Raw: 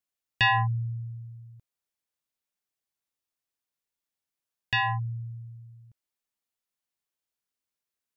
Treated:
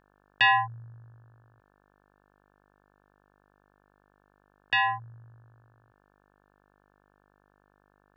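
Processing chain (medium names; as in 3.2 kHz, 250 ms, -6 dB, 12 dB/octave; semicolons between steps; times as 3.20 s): three-band isolator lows -17 dB, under 390 Hz, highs -12 dB, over 4 kHz; mains buzz 50 Hz, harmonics 35, -69 dBFS -1 dB/octave; trim +2 dB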